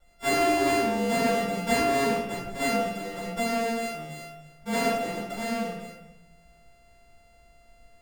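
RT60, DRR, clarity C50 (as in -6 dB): 0.95 s, -13.5 dB, 1.0 dB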